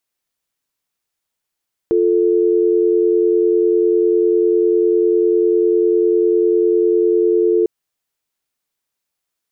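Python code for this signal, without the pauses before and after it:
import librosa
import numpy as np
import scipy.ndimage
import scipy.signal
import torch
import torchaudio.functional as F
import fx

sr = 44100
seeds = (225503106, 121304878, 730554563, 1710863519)

y = fx.call_progress(sr, length_s=5.75, kind='dial tone', level_db=-14.0)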